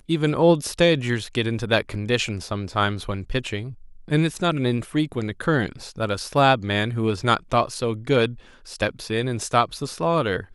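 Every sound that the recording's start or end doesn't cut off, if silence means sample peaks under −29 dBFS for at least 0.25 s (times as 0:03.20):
0:04.10–0:08.32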